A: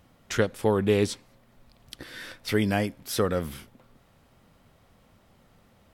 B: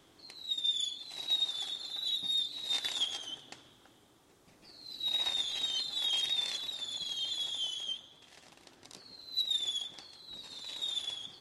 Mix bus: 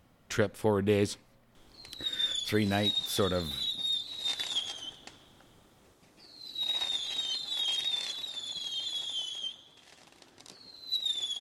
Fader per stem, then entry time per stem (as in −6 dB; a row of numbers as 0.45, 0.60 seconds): −4.0, +0.5 decibels; 0.00, 1.55 seconds